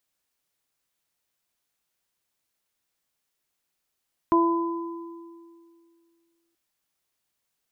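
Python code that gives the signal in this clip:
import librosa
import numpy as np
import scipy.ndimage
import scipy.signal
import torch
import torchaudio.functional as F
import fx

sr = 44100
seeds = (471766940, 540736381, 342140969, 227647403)

y = fx.additive(sr, length_s=2.23, hz=336.0, level_db=-17.5, upper_db=(-12, -1), decay_s=2.31, upper_decays_s=(0.91, 1.66))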